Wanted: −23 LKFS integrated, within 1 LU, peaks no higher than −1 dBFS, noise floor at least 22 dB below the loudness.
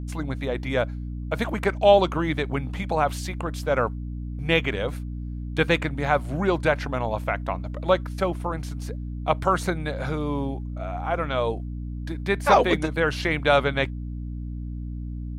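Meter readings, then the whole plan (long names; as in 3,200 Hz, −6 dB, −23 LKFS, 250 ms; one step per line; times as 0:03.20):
mains hum 60 Hz; hum harmonics up to 300 Hz; level of the hum −29 dBFS; integrated loudness −25.5 LKFS; sample peak −5.0 dBFS; target loudness −23.0 LKFS
→ mains-hum notches 60/120/180/240/300 Hz
level +2.5 dB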